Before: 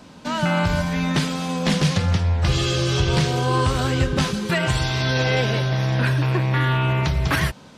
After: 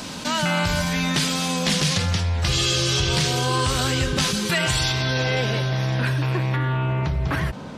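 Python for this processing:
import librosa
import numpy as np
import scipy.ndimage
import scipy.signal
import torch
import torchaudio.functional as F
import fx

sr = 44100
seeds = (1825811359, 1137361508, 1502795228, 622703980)

y = fx.high_shelf(x, sr, hz=2300.0, db=fx.steps((0.0, 11.5), (4.91, 2.5), (6.55, -10.5)))
y = fx.env_flatten(y, sr, amount_pct=50)
y = F.gain(torch.from_numpy(y), -5.5).numpy()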